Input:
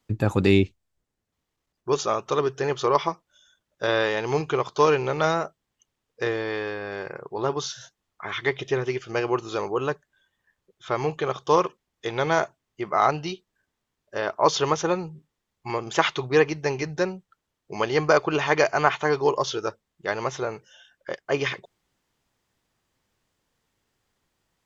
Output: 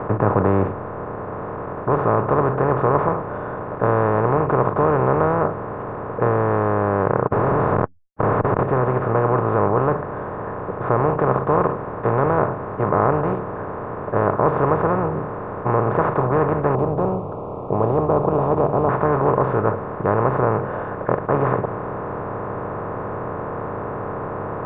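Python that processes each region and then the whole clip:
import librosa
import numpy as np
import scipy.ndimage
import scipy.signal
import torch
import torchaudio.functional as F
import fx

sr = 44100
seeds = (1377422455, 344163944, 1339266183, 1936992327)

y = fx.chain(x, sr, fx.schmitt(flips_db=-36.5),
    fx.high_shelf(hz=6200.0, db=10.5), at=(7.27, 8.63))
y = fx.chain(y, sr, fx.ellip_bandstop(low_hz=760.0, high_hz=4000.0, order=3, stop_db=60),
    fx.hum_notches(base_hz=50, count=3), at=(16.75, 18.89))
y = fx.bin_compress(y, sr, power=0.2)
y = scipy.signal.sosfilt(scipy.signal.butter(4, 1400.0, 'lowpass', fs=sr, output='sos'), y)
y = fx.dynamic_eq(y, sr, hz=130.0, q=1.2, threshold_db=-34.0, ratio=4.0, max_db=7)
y = y * 10.0 ** (-5.5 / 20.0)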